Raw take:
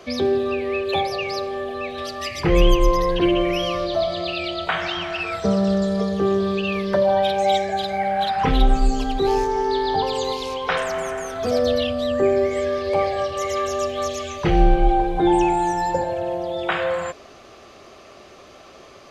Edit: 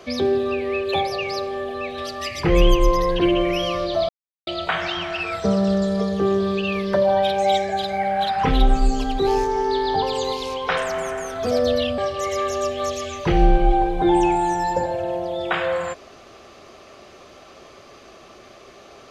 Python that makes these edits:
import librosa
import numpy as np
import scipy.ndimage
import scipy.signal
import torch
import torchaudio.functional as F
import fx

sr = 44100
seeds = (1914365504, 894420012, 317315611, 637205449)

y = fx.edit(x, sr, fx.silence(start_s=4.09, length_s=0.38),
    fx.cut(start_s=11.98, length_s=1.18), tone=tone)